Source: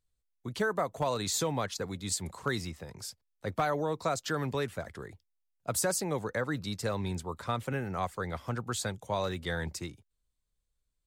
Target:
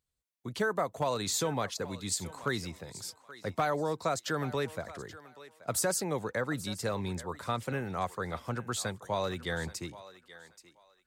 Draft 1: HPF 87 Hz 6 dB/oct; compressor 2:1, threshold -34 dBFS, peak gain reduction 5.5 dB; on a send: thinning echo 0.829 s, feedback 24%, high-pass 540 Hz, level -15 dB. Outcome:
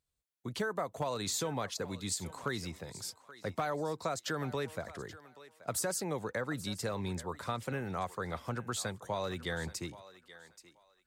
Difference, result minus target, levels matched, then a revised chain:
compressor: peak gain reduction +5.5 dB
HPF 87 Hz 6 dB/oct; on a send: thinning echo 0.829 s, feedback 24%, high-pass 540 Hz, level -15 dB

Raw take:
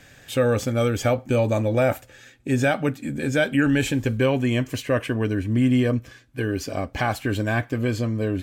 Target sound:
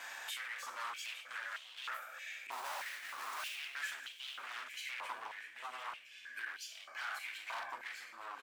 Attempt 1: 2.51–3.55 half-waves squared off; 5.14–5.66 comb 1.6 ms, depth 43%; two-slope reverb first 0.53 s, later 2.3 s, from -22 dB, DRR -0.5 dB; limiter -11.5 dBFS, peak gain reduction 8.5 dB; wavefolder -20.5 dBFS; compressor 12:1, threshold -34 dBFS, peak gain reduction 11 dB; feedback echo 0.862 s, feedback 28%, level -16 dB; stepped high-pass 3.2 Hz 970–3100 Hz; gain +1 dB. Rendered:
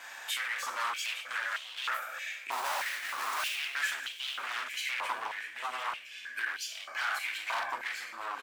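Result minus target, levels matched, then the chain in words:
compressor: peak gain reduction -9 dB
2.51–3.55 half-waves squared off; 5.14–5.66 comb 1.6 ms, depth 43%; two-slope reverb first 0.53 s, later 2.3 s, from -22 dB, DRR -0.5 dB; limiter -11.5 dBFS, peak gain reduction 8.5 dB; wavefolder -20.5 dBFS; compressor 12:1, threshold -44 dBFS, peak gain reduction 20.5 dB; feedback echo 0.862 s, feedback 28%, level -16 dB; stepped high-pass 3.2 Hz 970–3100 Hz; gain +1 dB

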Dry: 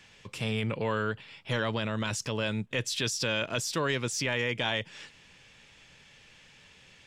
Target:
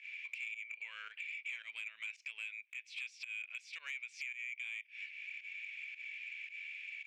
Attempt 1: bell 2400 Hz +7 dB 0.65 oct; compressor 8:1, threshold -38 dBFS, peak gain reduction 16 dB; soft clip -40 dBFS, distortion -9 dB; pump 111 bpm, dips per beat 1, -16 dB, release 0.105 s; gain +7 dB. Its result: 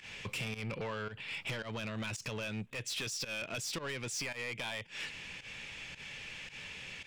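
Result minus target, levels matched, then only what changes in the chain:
compressor: peak gain reduction -7.5 dB; 2000 Hz band -3.5 dB
add first: ladder band-pass 2400 Hz, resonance 85%; change: compressor 8:1, threshold -47 dBFS, peak gain reduction 23 dB

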